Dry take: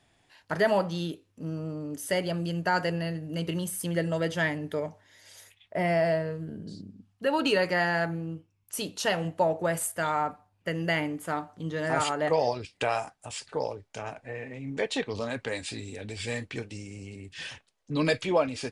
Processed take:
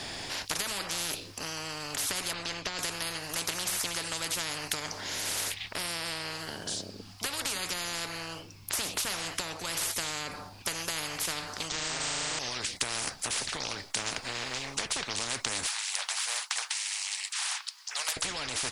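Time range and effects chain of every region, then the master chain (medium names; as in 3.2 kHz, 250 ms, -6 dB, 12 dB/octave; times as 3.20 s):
2.33–2.79 s: low-pass 3.9 kHz + compression 2.5:1, threshold -28 dBFS
11.68–12.39 s: brick-wall FIR low-pass 8.8 kHz + flutter echo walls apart 6.5 m, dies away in 1.3 s
15.67–18.17 s: steep high-pass 930 Hz 48 dB/octave + transformer saturation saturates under 3.2 kHz
whole clip: peaking EQ 4.8 kHz +12.5 dB 0.54 oct; compression, threshold -31 dBFS; spectrum-flattening compressor 10:1; trim +8.5 dB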